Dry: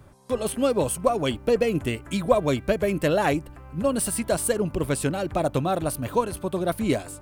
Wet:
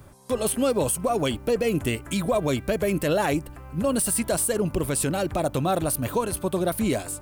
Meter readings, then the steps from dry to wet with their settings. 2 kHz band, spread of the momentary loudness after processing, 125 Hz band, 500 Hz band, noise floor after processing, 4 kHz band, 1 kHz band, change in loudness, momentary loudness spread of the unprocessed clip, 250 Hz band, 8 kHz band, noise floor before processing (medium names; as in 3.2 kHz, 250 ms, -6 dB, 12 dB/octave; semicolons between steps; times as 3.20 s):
-0.5 dB, 4 LU, +0.5 dB, -1.0 dB, -42 dBFS, +1.0 dB, -1.0 dB, 0.0 dB, 6 LU, +0.5 dB, +4.0 dB, -44 dBFS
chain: treble shelf 7 kHz +8.5 dB; peak limiter -16.5 dBFS, peak gain reduction 10 dB; trim +2 dB